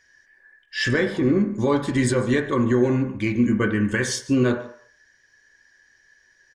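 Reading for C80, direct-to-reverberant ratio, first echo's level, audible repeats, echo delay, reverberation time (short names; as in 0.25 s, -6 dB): 11.5 dB, 3.0 dB, -18.0 dB, 1, 0.145 s, 0.60 s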